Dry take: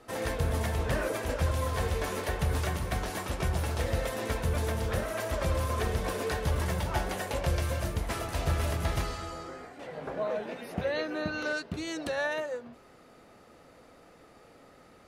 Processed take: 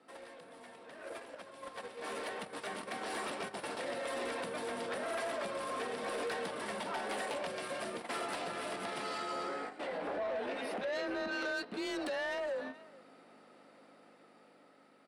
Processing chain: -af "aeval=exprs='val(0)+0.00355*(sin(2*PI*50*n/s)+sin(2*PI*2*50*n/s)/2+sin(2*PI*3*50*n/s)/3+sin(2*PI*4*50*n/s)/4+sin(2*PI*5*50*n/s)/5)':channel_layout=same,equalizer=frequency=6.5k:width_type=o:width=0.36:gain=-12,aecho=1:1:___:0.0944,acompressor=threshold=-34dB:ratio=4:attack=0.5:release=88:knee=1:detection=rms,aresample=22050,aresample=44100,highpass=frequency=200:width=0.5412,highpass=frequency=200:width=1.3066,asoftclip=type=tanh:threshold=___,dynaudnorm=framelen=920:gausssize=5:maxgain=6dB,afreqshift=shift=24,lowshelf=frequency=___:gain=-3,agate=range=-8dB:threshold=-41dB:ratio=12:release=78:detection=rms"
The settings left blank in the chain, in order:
428, -36.5dB, 450